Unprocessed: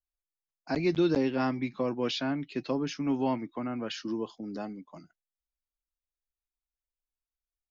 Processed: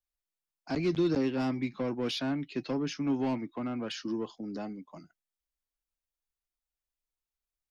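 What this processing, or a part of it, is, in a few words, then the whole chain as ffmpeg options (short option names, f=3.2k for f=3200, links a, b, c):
one-band saturation: -filter_complex "[0:a]acrossover=split=360|4200[a][b][c];[b]asoftclip=type=tanh:threshold=-33dB[d];[a][d][c]amix=inputs=3:normalize=0"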